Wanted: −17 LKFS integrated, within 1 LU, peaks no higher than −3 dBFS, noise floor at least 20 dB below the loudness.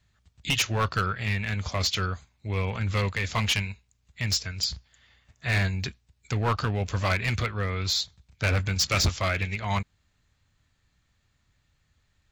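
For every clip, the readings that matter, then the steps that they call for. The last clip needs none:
share of clipped samples 1.1%; peaks flattened at −19.0 dBFS; integrated loudness −27.5 LKFS; sample peak −19.0 dBFS; target loudness −17.0 LKFS
→ clipped peaks rebuilt −19 dBFS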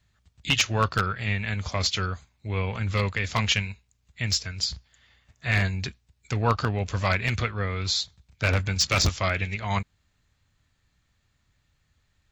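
share of clipped samples 0.0%; integrated loudness −26.5 LKFS; sample peak −10.0 dBFS; target loudness −17.0 LKFS
→ level +9.5 dB
brickwall limiter −3 dBFS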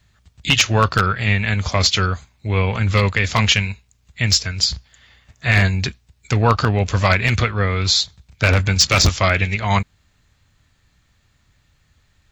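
integrated loudness −17.5 LKFS; sample peak −3.0 dBFS; background noise floor −61 dBFS

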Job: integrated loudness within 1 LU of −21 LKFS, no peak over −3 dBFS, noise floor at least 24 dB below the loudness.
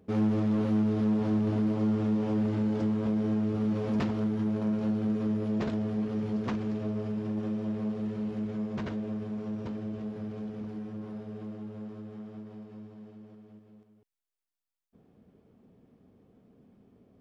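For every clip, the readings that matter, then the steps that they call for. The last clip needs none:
share of clipped samples 0.9%; peaks flattened at −22.0 dBFS; integrated loudness −30.5 LKFS; sample peak −22.0 dBFS; target loudness −21.0 LKFS
→ clipped peaks rebuilt −22 dBFS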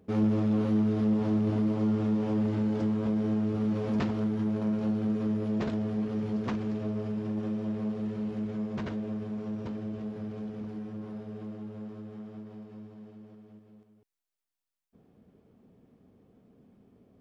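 share of clipped samples 0.0%; integrated loudness −30.5 LKFS; sample peak −17.5 dBFS; target loudness −21.0 LKFS
→ level +9.5 dB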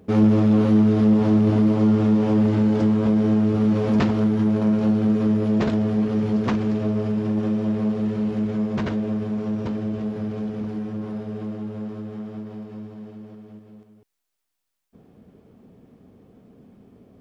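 integrated loudness −21.0 LKFS; sample peak −8.0 dBFS; background noise floor −79 dBFS

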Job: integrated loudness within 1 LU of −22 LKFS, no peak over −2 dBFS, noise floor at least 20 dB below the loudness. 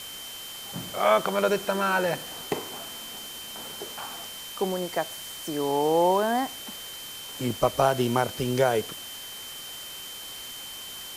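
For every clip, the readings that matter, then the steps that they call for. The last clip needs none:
interfering tone 3,100 Hz; level of the tone −40 dBFS; background noise floor −40 dBFS; target noise floor −48 dBFS; integrated loudness −28.0 LKFS; sample peak −7.0 dBFS; target loudness −22.0 LKFS
→ notch filter 3,100 Hz, Q 30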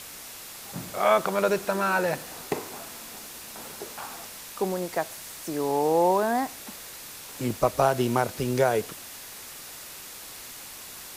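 interfering tone none found; background noise floor −42 dBFS; target noise floor −47 dBFS
→ broadband denoise 6 dB, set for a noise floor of −42 dBFS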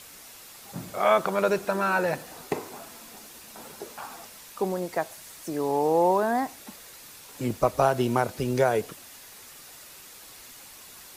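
background noise floor −47 dBFS; integrated loudness −26.0 LKFS; sample peak −7.5 dBFS; target loudness −22.0 LKFS
→ level +4 dB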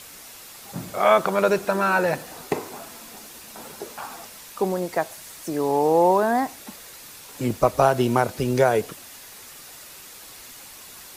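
integrated loudness −22.0 LKFS; sample peak −3.5 dBFS; background noise floor −43 dBFS

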